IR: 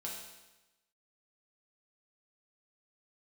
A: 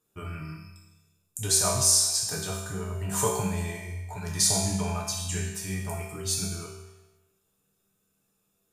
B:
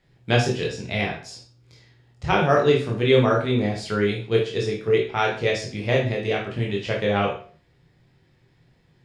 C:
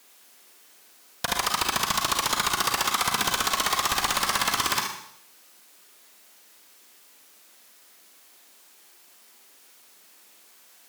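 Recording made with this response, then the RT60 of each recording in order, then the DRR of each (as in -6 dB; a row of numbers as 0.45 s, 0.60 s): A; 1.1 s, 0.40 s, 0.70 s; -4.0 dB, -2.5 dB, 1.5 dB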